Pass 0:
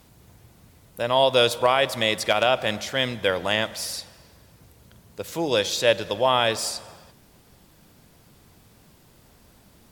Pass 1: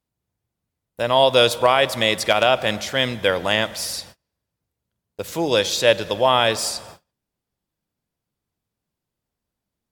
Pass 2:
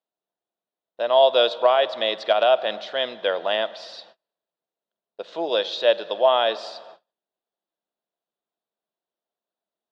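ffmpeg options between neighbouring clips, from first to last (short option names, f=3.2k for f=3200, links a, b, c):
-af "agate=range=-32dB:threshold=-44dB:ratio=16:detection=peak,volume=3.5dB"
-af "highpass=f=260:w=0.5412,highpass=f=260:w=1.3066,equalizer=f=270:t=q:w=4:g=-9,equalizer=f=660:t=q:w=4:g=8,equalizer=f=2.2k:t=q:w=4:g=-9,equalizer=f=3.8k:t=q:w=4:g=5,lowpass=f=3.9k:w=0.5412,lowpass=f=3.9k:w=1.3066,volume=-5dB"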